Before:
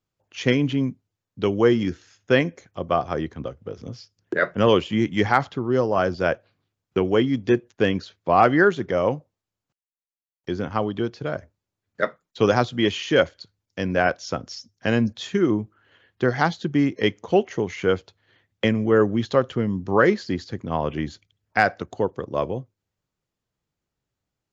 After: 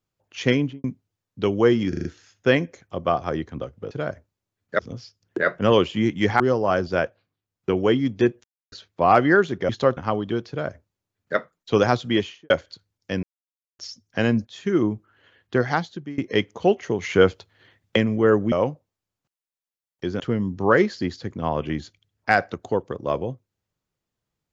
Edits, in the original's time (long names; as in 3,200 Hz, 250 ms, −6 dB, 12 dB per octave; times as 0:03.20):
0:00.55–0:00.84: fade out and dull
0:01.89: stutter 0.04 s, 5 plays
0:05.36–0:05.68: remove
0:06.24–0:07.04: duck −10.5 dB, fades 0.40 s
0:07.72–0:08.00: silence
0:08.97–0:10.65: swap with 0:19.20–0:19.48
0:11.17–0:12.05: duplicate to 0:03.75
0:12.80–0:13.18: fade out and dull
0:13.91–0:14.47: silence
0:15.15–0:15.45: fade in linear, from −14 dB
0:16.29–0:16.86: fade out, to −22.5 dB
0:17.71–0:18.64: clip gain +5 dB